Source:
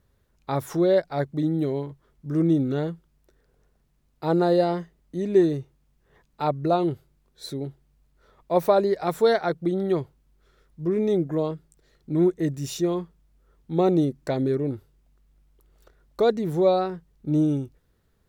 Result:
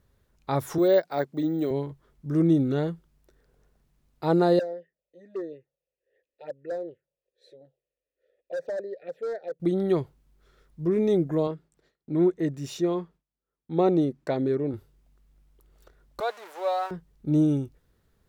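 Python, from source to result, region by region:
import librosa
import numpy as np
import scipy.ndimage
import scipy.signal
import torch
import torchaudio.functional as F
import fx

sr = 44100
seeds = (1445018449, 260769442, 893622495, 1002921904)

y = fx.chain(x, sr, fx.highpass(hz=240.0, slope=12),
    fx.resample_bad(factor=2, down='none', up='hold'), at=(0.78, 1.71))
y = fx.chain(y, sr, fx.vowel_filter(vowel='e'),
    fx.clip_hard(threshold_db=-27.0),
    fx.env_phaser(low_hz=170.0, high_hz=2800.0, full_db=-30.0), at=(4.59, 9.6))
y = fx.chain(y, sr, fx.highpass(hz=190.0, slope=6),
    fx.gate_hold(open_db=-52.0, close_db=-56.0, hold_ms=71.0, range_db=-21, attack_ms=1.4, release_ms=100.0),
    fx.high_shelf(hz=5300.0, db=-11.0), at=(11.47, 14.74))
y = fx.chain(y, sr, fx.zero_step(step_db=-33.0),
    fx.highpass(hz=690.0, slope=24),
    fx.high_shelf(hz=3400.0, db=-10.5), at=(16.2, 16.91))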